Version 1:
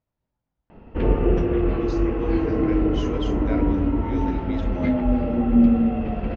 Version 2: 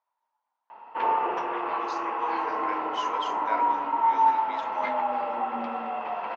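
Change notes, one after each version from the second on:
master: add resonant high-pass 940 Hz, resonance Q 6.3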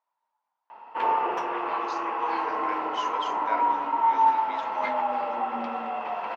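background: remove distance through air 100 m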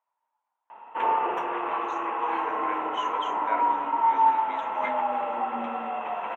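master: add Butterworth band-stop 4.8 kHz, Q 1.6

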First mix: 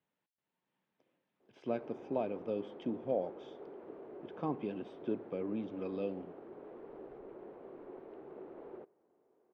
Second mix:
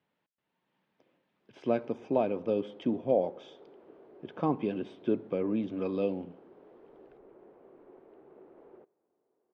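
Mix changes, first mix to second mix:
speech +7.5 dB; background -5.5 dB

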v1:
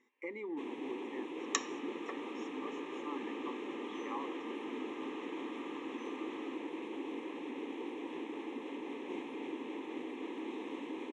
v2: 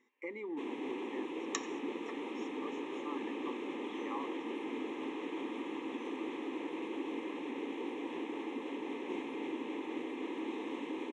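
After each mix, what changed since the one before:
second sound -6.0 dB; reverb: on, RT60 0.45 s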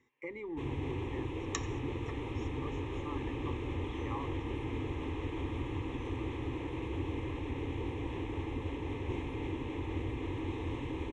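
master: remove brick-wall FIR high-pass 180 Hz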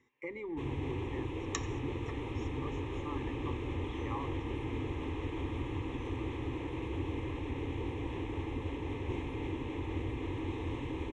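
speech: send on

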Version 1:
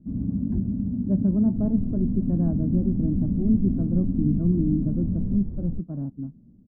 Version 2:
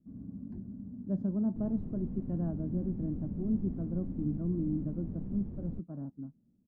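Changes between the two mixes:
speech -4.0 dB; first sound -11.0 dB; master: add tilt EQ +2.5 dB/octave

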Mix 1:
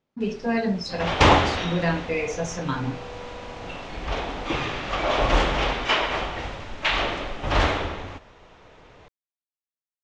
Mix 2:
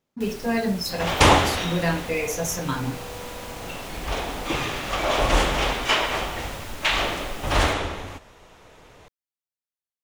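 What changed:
first sound +5.5 dB; master: remove Bessel low-pass 4.3 kHz, order 6

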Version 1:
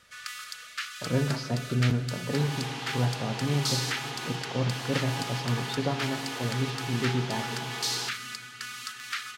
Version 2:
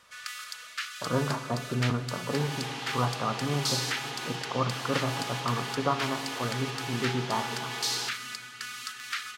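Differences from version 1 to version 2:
speech: add resonant low-pass 1.2 kHz, resonance Q 8.3; master: add bass shelf 190 Hz -6 dB

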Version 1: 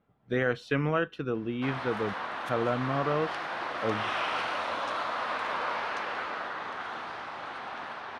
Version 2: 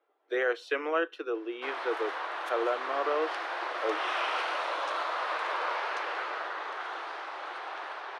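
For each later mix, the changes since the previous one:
master: add steep high-pass 320 Hz 72 dB/octave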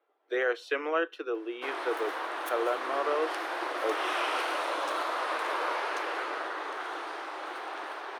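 speech: add treble shelf 12 kHz +9 dB; background: remove band-pass 510–5500 Hz

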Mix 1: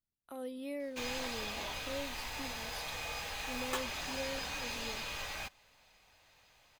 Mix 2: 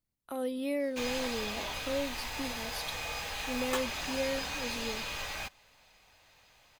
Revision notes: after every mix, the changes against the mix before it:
speech +8.0 dB; background +3.0 dB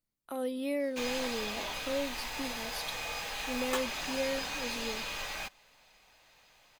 master: add peaking EQ 78 Hz -10 dB 1 oct

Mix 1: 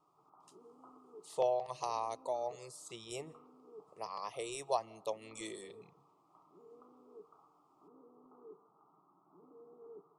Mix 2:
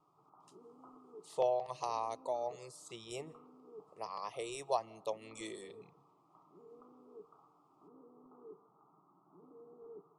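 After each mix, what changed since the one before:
speech: add treble shelf 6.9 kHz -5 dB; background: add bass shelf 150 Hz +8.5 dB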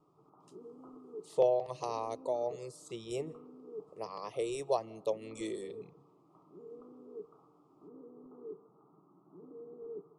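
master: add resonant low shelf 620 Hz +6.5 dB, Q 1.5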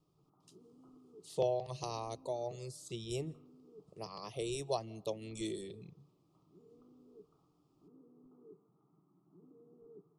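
speech +8.0 dB; master: add graphic EQ 250/500/1000/2000/8000 Hz -4/-12/-9/-10/-6 dB

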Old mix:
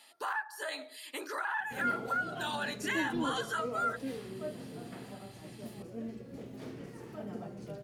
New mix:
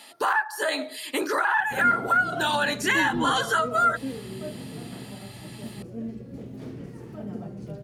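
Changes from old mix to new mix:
speech +11.0 dB; master: add bass shelf 310 Hz +11 dB

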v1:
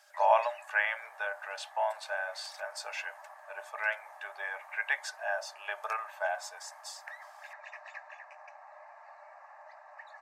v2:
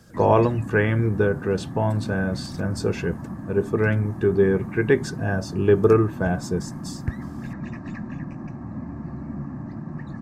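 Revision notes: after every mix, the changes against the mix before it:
master: remove rippled Chebyshev high-pass 580 Hz, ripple 6 dB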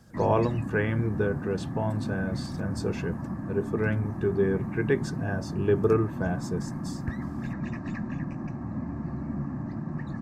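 speech -6.5 dB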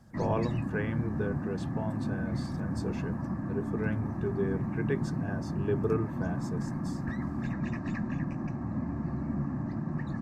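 speech -7.0 dB

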